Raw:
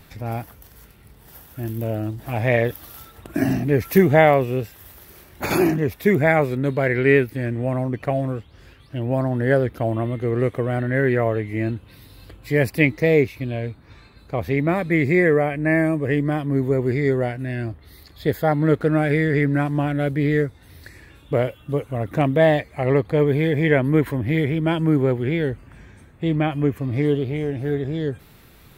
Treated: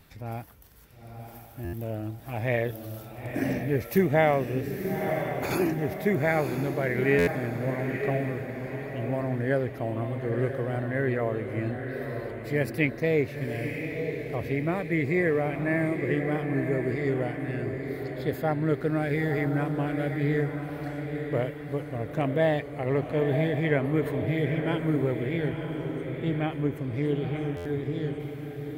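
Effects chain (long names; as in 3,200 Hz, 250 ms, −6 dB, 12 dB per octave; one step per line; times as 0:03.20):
feedback delay with all-pass diffusion 953 ms, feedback 48%, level −6 dB
buffer that repeats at 0:01.64/0:07.18/0:27.56, samples 512, times 7
level −8 dB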